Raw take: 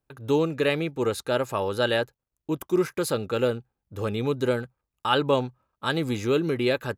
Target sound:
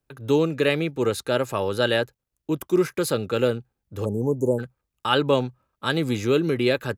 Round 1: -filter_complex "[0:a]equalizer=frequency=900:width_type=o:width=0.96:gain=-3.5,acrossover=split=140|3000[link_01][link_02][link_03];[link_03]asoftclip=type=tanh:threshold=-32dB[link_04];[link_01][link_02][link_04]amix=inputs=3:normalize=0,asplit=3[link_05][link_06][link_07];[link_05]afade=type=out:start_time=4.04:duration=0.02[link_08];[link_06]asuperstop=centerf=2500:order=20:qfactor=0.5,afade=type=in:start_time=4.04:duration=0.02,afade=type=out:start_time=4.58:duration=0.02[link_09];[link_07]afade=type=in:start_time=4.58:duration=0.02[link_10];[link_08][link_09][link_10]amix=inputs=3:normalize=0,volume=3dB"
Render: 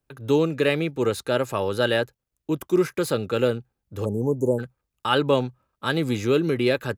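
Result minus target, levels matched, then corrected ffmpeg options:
soft clipping: distortion +15 dB
-filter_complex "[0:a]equalizer=frequency=900:width_type=o:width=0.96:gain=-3.5,acrossover=split=140|3000[link_01][link_02][link_03];[link_03]asoftclip=type=tanh:threshold=-20dB[link_04];[link_01][link_02][link_04]amix=inputs=3:normalize=0,asplit=3[link_05][link_06][link_07];[link_05]afade=type=out:start_time=4.04:duration=0.02[link_08];[link_06]asuperstop=centerf=2500:order=20:qfactor=0.5,afade=type=in:start_time=4.04:duration=0.02,afade=type=out:start_time=4.58:duration=0.02[link_09];[link_07]afade=type=in:start_time=4.58:duration=0.02[link_10];[link_08][link_09][link_10]amix=inputs=3:normalize=0,volume=3dB"

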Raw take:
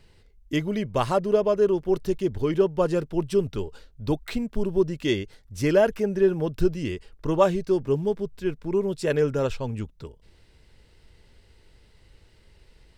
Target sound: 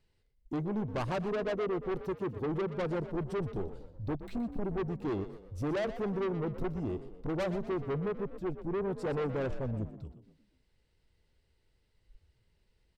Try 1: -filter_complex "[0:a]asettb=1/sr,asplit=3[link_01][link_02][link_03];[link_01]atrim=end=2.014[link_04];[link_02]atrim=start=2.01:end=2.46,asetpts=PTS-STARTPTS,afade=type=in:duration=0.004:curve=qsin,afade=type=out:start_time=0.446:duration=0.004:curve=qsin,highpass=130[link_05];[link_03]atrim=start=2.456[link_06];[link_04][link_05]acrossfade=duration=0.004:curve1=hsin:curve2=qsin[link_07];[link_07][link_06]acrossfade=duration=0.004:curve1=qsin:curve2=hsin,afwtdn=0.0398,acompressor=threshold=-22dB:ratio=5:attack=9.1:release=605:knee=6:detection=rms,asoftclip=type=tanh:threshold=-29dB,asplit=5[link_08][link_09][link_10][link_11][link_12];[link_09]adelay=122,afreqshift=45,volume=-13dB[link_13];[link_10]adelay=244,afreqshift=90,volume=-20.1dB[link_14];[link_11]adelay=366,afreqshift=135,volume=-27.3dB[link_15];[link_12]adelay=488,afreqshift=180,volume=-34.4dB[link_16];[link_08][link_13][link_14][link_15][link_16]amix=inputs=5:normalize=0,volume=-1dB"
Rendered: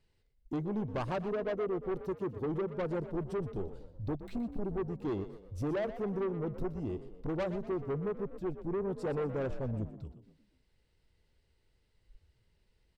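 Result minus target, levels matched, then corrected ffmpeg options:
downward compressor: peak gain reduction +5.5 dB
-filter_complex "[0:a]asettb=1/sr,asplit=3[link_01][link_02][link_03];[link_01]atrim=end=2.014[link_04];[link_02]atrim=start=2.01:end=2.46,asetpts=PTS-STARTPTS,afade=type=in:duration=0.004:curve=qsin,afade=type=out:start_time=0.446:duration=0.004:curve=qsin,highpass=130[link_05];[link_03]atrim=start=2.456[link_06];[link_04][link_05]acrossfade=duration=0.004:curve1=hsin:curve2=qsin[link_07];[link_07][link_06]acrossfade=duration=0.004:curve1=qsin:curve2=hsin,afwtdn=0.0398,acompressor=threshold=-15dB:ratio=5:attack=9.1:release=605:knee=6:detection=rms,asoftclip=type=tanh:threshold=-29dB,asplit=5[link_08][link_09][link_10][link_11][link_12];[link_09]adelay=122,afreqshift=45,volume=-13dB[link_13];[link_10]adelay=244,afreqshift=90,volume=-20.1dB[link_14];[link_11]adelay=366,afreqshift=135,volume=-27.3dB[link_15];[link_12]adelay=488,afreqshift=180,volume=-34.4dB[link_16];[link_08][link_13][link_14][link_15][link_16]amix=inputs=5:normalize=0,volume=-1dB"

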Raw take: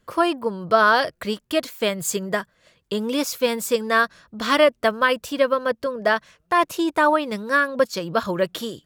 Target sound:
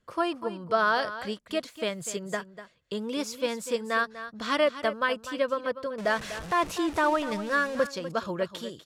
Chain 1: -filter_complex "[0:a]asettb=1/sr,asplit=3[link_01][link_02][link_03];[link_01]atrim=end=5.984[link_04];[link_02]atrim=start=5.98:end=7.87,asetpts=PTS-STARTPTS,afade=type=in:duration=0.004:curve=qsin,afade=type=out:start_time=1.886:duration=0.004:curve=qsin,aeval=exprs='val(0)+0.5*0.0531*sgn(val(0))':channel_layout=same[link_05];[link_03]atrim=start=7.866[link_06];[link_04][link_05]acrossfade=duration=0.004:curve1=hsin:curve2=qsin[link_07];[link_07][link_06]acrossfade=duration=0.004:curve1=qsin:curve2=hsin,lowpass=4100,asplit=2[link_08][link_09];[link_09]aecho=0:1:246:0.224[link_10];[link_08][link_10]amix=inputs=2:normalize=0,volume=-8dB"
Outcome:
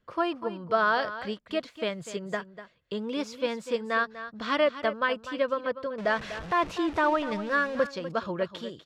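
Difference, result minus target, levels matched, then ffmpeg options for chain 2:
8,000 Hz band −9.5 dB
-filter_complex "[0:a]asettb=1/sr,asplit=3[link_01][link_02][link_03];[link_01]atrim=end=5.984[link_04];[link_02]atrim=start=5.98:end=7.87,asetpts=PTS-STARTPTS,afade=type=in:duration=0.004:curve=qsin,afade=type=out:start_time=1.886:duration=0.004:curve=qsin,aeval=exprs='val(0)+0.5*0.0531*sgn(val(0))':channel_layout=same[link_05];[link_03]atrim=start=7.866[link_06];[link_04][link_05]acrossfade=duration=0.004:curve1=hsin:curve2=qsin[link_07];[link_07][link_06]acrossfade=duration=0.004:curve1=qsin:curve2=hsin,lowpass=9400,asplit=2[link_08][link_09];[link_09]aecho=0:1:246:0.224[link_10];[link_08][link_10]amix=inputs=2:normalize=0,volume=-8dB"

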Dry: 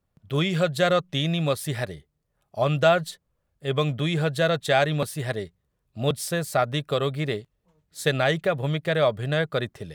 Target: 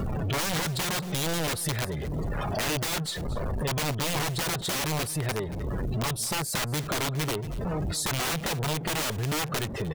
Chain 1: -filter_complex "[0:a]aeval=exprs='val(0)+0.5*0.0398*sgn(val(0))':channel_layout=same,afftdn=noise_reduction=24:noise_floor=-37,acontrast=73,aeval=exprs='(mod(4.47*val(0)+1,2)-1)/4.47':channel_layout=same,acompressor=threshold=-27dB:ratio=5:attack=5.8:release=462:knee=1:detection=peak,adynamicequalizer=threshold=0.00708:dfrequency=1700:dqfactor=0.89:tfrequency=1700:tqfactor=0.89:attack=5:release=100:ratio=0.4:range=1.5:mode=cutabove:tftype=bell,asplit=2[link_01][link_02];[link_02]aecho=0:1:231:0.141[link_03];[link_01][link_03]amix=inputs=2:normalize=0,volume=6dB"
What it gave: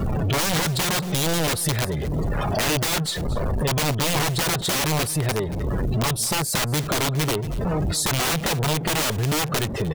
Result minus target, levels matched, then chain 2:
downward compressor: peak gain reduction −6.5 dB
-filter_complex "[0:a]aeval=exprs='val(0)+0.5*0.0398*sgn(val(0))':channel_layout=same,afftdn=noise_reduction=24:noise_floor=-37,acontrast=73,aeval=exprs='(mod(4.47*val(0)+1,2)-1)/4.47':channel_layout=same,acompressor=threshold=-35dB:ratio=5:attack=5.8:release=462:knee=1:detection=peak,adynamicequalizer=threshold=0.00708:dfrequency=1700:dqfactor=0.89:tfrequency=1700:tqfactor=0.89:attack=5:release=100:ratio=0.4:range=1.5:mode=cutabove:tftype=bell,asplit=2[link_01][link_02];[link_02]aecho=0:1:231:0.141[link_03];[link_01][link_03]amix=inputs=2:normalize=0,volume=6dB"

